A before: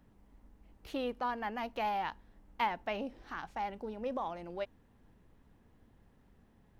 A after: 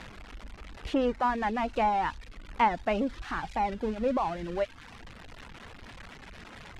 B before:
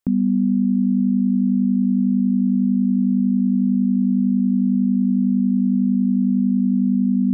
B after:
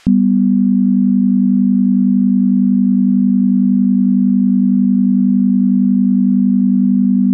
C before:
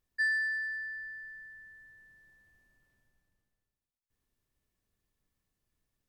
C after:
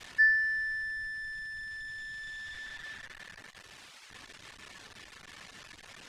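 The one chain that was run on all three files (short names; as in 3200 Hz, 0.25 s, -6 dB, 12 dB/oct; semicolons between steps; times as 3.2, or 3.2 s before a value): switching spikes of -27.5 dBFS; treble ducked by the level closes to 1400 Hz, closed at -16.5 dBFS; LPF 2200 Hz 12 dB/oct; low shelf 210 Hz +9 dB; limiter -11.5 dBFS; reverb removal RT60 0.72 s; gain +8 dB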